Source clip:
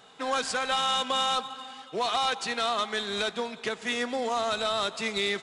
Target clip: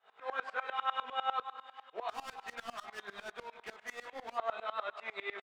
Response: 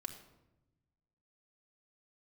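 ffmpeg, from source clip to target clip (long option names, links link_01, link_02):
-filter_complex "[0:a]acrossover=split=3400[link_01][link_02];[link_02]acompressor=threshold=-43dB:ratio=4:attack=1:release=60[link_03];[link_01][link_03]amix=inputs=2:normalize=0,acrossover=split=510 2700:gain=0.0631 1 0.0794[link_04][link_05][link_06];[link_04][link_05][link_06]amix=inputs=3:normalize=0,asplit=3[link_07][link_08][link_09];[link_07]afade=type=out:start_time=2.08:duration=0.02[link_10];[link_08]asoftclip=type=hard:threshold=-37dB,afade=type=in:start_time=2.08:duration=0.02,afade=type=out:start_time=4.35:duration=0.02[link_11];[link_09]afade=type=in:start_time=4.35:duration=0.02[link_12];[link_10][link_11][link_12]amix=inputs=3:normalize=0,flanger=delay=16.5:depth=7.7:speed=0.4,asplit=2[link_13][link_14];[link_14]adelay=151.6,volume=-14dB,highshelf=frequency=4000:gain=-3.41[link_15];[link_13][link_15]amix=inputs=2:normalize=0,aeval=exprs='val(0)*pow(10,-23*if(lt(mod(-10*n/s,1),2*abs(-10)/1000),1-mod(-10*n/s,1)/(2*abs(-10)/1000),(mod(-10*n/s,1)-2*abs(-10)/1000)/(1-2*abs(-10)/1000))/20)':channel_layout=same,volume=4dB"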